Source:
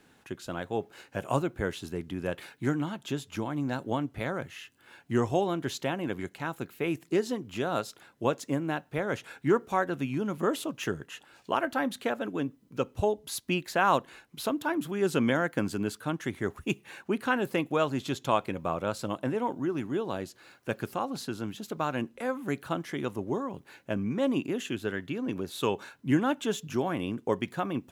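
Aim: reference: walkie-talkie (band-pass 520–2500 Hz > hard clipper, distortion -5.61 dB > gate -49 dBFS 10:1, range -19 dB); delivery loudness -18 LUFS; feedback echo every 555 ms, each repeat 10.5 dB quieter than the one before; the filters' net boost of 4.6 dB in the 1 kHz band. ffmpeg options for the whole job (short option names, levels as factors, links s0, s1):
-af "highpass=520,lowpass=2500,equalizer=f=1000:t=o:g=6.5,aecho=1:1:555|1110|1665:0.299|0.0896|0.0269,asoftclip=type=hard:threshold=0.0473,agate=range=0.112:threshold=0.00355:ratio=10,volume=7.5"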